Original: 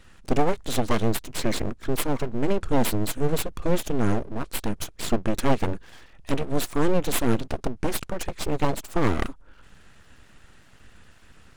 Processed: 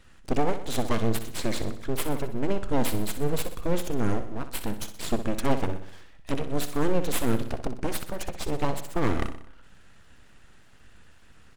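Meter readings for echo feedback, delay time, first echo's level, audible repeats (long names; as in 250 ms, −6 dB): 54%, 62 ms, −11.0 dB, 5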